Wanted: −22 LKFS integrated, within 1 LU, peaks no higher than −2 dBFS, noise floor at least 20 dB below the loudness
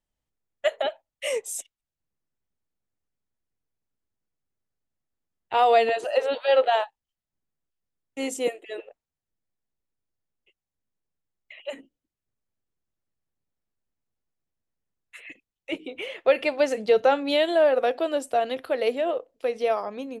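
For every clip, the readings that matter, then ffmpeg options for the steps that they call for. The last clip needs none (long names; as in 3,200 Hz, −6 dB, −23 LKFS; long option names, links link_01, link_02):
integrated loudness −24.5 LKFS; sample peak −9.0 dBFS; target loudness −22.0 LKFS
→ -af "volume=2.5dB"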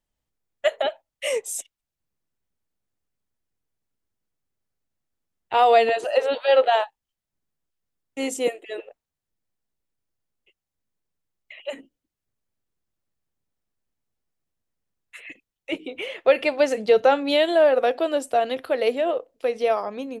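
integrated loudness −22.0 LKFS; sample peak −6.5 dBFS; background noise floor −87 dBFS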